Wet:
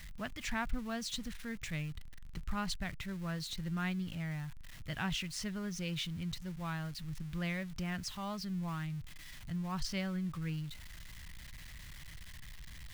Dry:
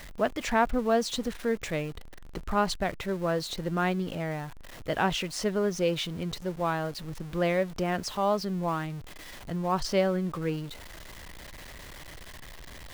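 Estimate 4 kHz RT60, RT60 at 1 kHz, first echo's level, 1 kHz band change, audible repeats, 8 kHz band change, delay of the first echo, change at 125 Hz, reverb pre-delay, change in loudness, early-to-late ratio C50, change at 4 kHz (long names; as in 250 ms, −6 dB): no reverb audible, no reverb audible, no echo audible, −14.5 dB, no echo audible, −6.0 dB, no echo audible, −4.0 dB, no reverb audible, −9.5 dB, no reverb audible, −6.0 dB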